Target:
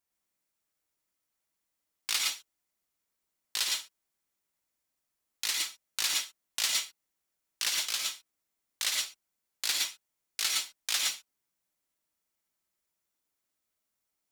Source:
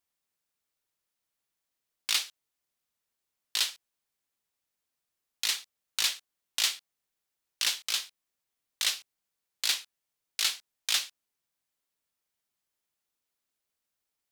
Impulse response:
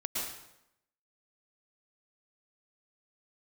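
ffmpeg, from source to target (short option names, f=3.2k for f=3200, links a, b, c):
-filter_complex "[0:a]equalizer=f=3.4k:w=1.4:g=-4[a];[1:a]atrim=start_sample=2205,afade=t=out:st=0.17:d=0.01,atrim=end_sample=7938[b];[a][b]afir=irnorm=-1:irlink=0,volume=1dB"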